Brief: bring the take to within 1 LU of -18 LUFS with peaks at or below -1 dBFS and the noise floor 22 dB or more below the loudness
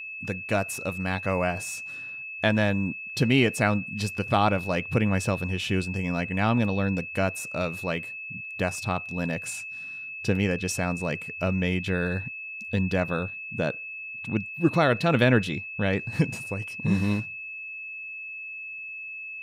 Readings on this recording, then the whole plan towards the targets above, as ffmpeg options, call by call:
steady tone 2600 Hz; tone level -35 dBFS; loudness -27.5 LUFS; peak -8.0 dBFS; loudness target -18.0 LUFS
-> -af "bandreject=f=2.6k:w=30"
-af "volume=9.5dB,alimiter=limit=-1dB:level=0:latency=1"

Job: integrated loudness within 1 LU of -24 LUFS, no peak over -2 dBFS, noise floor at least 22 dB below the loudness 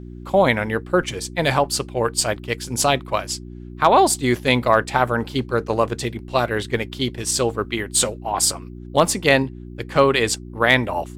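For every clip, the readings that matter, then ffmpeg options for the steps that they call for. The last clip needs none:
hum 60 Hz; harmonics up to 360 Hz; hum level -33 dBFS; loudness -20.0 LUFS; peak -2.0 dBFS; loudness target -24.0 LUFS
-> -af "bandreject=f=60:t=h:w=4,bandreject=f=120:t=h:w=4,bandreject=f=180:t=h:w=4,bandreject=f=240:t=h:w=4,bandreject=f=300:t=h:w=4,bandreject=f=360:t=h:w=4"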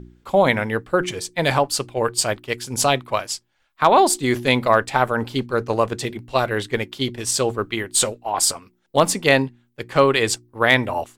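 hum none; loudness -20.0 LUFS; peak -1.5 dBFS; loudness target -24.0 LUFS
-> -af "volume=-4dB"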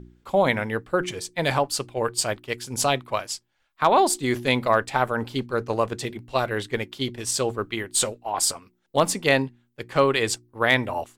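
loudness -24.0 LUFS; peak -5.5 dBFS; noise floor -70 dBFS

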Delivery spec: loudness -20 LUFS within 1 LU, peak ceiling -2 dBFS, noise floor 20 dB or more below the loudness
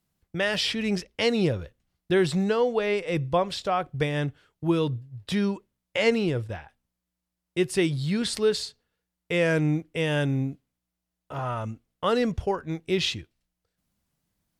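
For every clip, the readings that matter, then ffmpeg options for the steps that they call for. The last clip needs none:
loudness -26.5 LUFS; peak -10.5 dBFS; loudness target -20.0 LUFS
-> -af "volume=6.5dB"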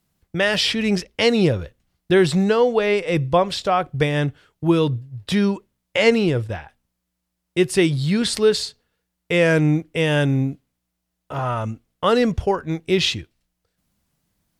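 loudness -20.0 LUFS; peak -4.0 dBFS; noise floor -78 dBFS

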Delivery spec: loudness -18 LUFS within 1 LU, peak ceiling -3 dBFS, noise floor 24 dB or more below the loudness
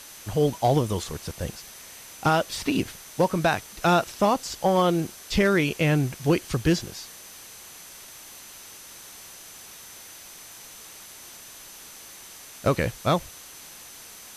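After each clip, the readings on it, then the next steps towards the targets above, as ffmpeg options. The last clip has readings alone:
steady tone 6100 Hz; tone level -50 dBFS; noise floor -45 dBFS; noise floor target -49 dBFS; loudness -24.5 LUFS; peak -12.0 dBFS; loudness target -18.0 LUFS
-> -af "bandreject=f=6.1k:w=30"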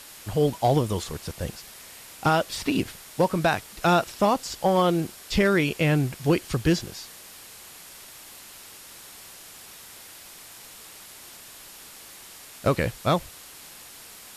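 steady tone none; noise floor -46 dBFS; noise floor target -49 dBFS
-> -af "afftdn=nr=6:nf=-46"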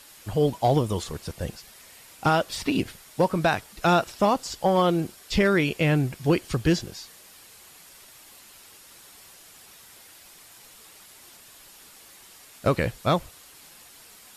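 noise floor -50 dBFS; loudness -25.0 LUFS; peak -12.0 dBFS; loudness target -18.0 LUFS
-> -af "volume=7dB"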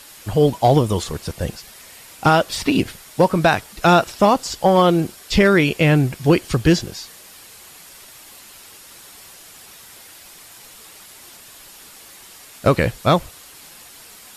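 loudness -18.0 LUFS; peak -5.0 dBFS; noise floor -43 dBFS

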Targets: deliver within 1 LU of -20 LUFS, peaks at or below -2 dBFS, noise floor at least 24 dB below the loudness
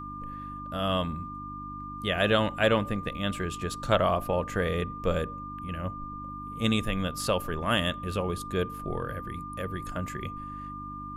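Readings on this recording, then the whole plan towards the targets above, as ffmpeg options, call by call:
hum 50 Hz; harmonics up to 300 Hz; hum level -41 dBFS; steady tone 1200 Hz; tone level -38 dBFS; loudness -30.5 LUFS; peak -9.0 dBFS; loudness target -20.0 LUFS
-> -af "bandreject=f=50:t=h:w=4,bandreject=f=100:t=h:w=4,bandreject=f=150:t=h:w=4,bandreject=f=200:t=h:w=4,bandreject=f=250:t=h:w=4,bandreject=f=300:t=h:w=4"
-af "bandreject=f=1.2k:w=30"
-af "volume=10.5dB,alimiter=limit=-2dB:level=0:latency=1"

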